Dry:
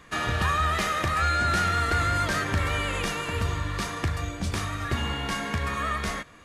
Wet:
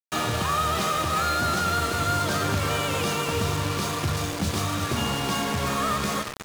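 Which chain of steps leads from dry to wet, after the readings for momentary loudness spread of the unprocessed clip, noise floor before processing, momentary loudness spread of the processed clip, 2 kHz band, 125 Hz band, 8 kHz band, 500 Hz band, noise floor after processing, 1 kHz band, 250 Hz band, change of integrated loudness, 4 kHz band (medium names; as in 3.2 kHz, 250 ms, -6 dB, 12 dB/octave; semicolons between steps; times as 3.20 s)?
7 LU, -44 dBFS, 3 LU, -1.5 dB, +0.5 dB, +6.5 dB, +5.0 dB, -33 dBFS, +1.5 dB, +4.5 dB, +1.5 dB, +4.0 dB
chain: peaking EQ 1.9 kHz -10.5 dB 0.71 oct; in parallel at -2 dB: gain riding within 5 dB; on the sum: high-pass 100 Hz 24 dB/octave; peak limiter -16.5 dBFS, peak gain reduction 6 dB; on a send: feedback delay 359 ms, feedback 32%, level -9.5 dB; on the sum: bit crusher 5-bit; treble shelf 12 kHz -9 dB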